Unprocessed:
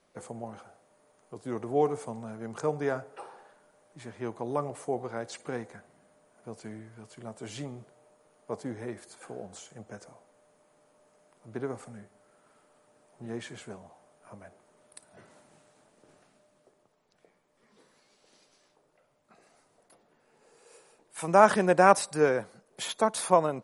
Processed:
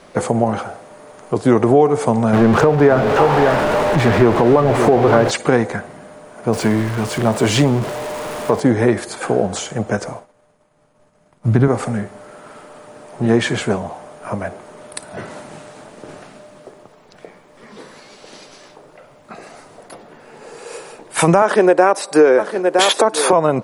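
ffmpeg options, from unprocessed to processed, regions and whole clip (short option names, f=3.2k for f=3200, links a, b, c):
-filter_complex "[0:a]asettb=1/sr,asplit=3[a][b][c];[a]atrim=end=2.334[d];[b]atrim=start=2.33:end=5.31,asetpts=PTS-STARTPTS,afade=t=in:d=0.004:c=qsin,afade=t=out:st=2.976:d=0.004:c=qsin,aeval=exprs='val(0)+0.5*0.0188*sgn(val(0))':c=same,lowpass=f=1.7k:p=1,aecho=1:1:564:0.316,atrim=end_sample=131418[e];[c]atrim=start=5.306[f];[d][e]acrossfade=d=0.004:c1=hsin:c2=qsin[g];[g][f]acrossfade=d=0.004:c1=qsin:c2=hsin,asettb=1/sr,asplit=3[h][i][j];[h]atrim=end=6.534[k];[i]atrim=start=6.53:end=8.6,asetpts=PTS-STARTPTS,afade=t=in:d=0.004:c=qsin,afade=t=out:st=2.066:d=0.004:c=qsin,aeval=exprs='val(0)+0.5*0.00473*sgn(val(0))':c=same,equalizer=f=1k:w=7.2:g=4[l];[j]atrim=start=8.596[m];[k][l]acrossfade=d=0.004:c1=hsin:c2=qsin[n];[n][m]acrossfade=d=0.004:c1=qsin:c2=hsin,asettb=1/sr,asplit=3[o][p][q];[o]atrim=end=9.974[r];[p]atrim=start=9.97:end=11.68,asetpts=PTS-STARTPTS,afade=t=in:d=0.004:c=qsin,afade=t=out:st=1.706:d=0.004:c=qsin,agate=range=-33dB:threshold=-54dB:ratio=3:release=100:detection=peak,asubboost=boost=10:cutoff=180[s];[q]atrim=start=11.676[t];[r][s]acrossfade=d=0.004:c1=hsin:c2=qsin[u];[u][t]acrossfade=d=0.004:c1=qsin:c2=hsin,asettb=1/sr,asplit=3[v][w][x];[v]atrim=end=21.424[y];[w]atrim=start=21.42:end=23.33,asetpts=PTS-STARTPTS,afade=t=in:d=0.004:c=qsin,afade=t=out:st=1.906:d=0.004:c=qsin,highpass=f=350:t=q:w=1.7,aecho=1:1:963:0.0944,atrim=end_sample=84231[z];[x]atrim=start=23.326[aa];[y][z]acrossfade=d=0.004:c1=hsin:c2=qsin[ab];[ab][aa]acrossfade=d=0.004:c1=qsin:c2=hsin,highshelf=f=6.1k:g=-8.5,acompressor=threshold=-33dB:ratio=5,alimiter=level_in=26dB:limit=-1dB:release=50:level=0:latency=1,volume=-1dB"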